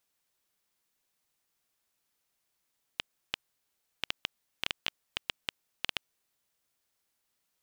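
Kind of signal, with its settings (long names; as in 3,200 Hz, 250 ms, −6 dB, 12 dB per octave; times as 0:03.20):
Geiger counter clicks 5.1 per second −11 dBFS 3.12 s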